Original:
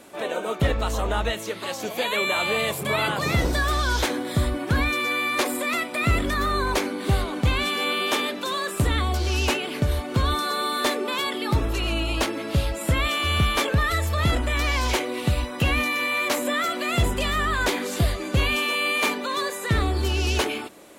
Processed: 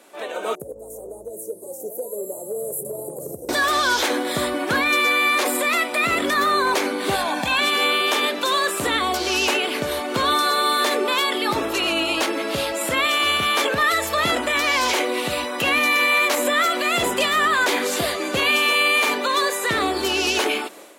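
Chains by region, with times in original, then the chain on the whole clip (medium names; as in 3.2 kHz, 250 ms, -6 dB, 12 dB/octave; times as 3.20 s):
0.55–3.49 s: elliptic band-stop 470–9300 Hz, stop band 60 dB + peaking EQ 260 Hz -11 dB 1.1 oct + compression, threshold -29 dBFS
7.15–7.61 s: comb 1.2 ms, depth 94% + compression 2:1, threshold -18 dBFS + peaking EQ 120 Hz -7.5 dB 0.87 oct
whole clip: high-pass 340 Hz 12 dB/octave; peak limiter -18 dBFS; level rider gain up to 9.5 dB; trim -2 dB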